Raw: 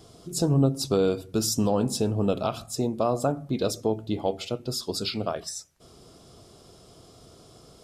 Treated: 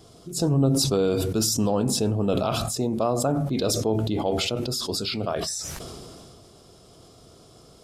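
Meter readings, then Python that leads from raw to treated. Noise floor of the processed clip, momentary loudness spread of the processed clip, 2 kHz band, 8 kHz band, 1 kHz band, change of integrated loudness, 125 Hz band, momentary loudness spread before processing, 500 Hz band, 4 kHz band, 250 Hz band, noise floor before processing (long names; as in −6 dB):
−52 dBFS, 10 LU, +5.0 dB, +5.0 dB, +1.5 dB, +2.5 dB, +2.5 dB, 8 LU, +1.5 dB, +5.0 dB, +2.0 dB, −53 dBFS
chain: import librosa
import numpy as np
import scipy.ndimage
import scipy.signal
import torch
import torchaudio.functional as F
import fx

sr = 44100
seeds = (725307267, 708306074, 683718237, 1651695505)

y = fx.sustainer(x, sr, db_per_s=22.0)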